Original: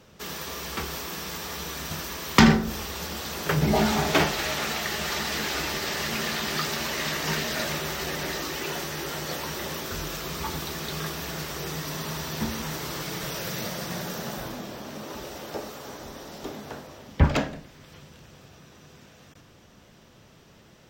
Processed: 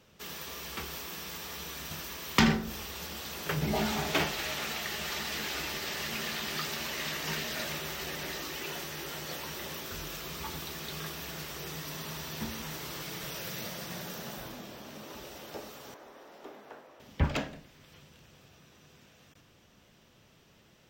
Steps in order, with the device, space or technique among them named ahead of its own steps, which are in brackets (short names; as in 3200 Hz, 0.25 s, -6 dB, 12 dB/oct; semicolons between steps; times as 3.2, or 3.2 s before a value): 15.94–17 three-band isolator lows -18 dB, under 290 Hz, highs -12 dB, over 2200 Hz; presence and air boost (bell 2800 Hz +4 dB 1 oct; high shelf 9800 Hz +5.5 dB); gain -8.5 dB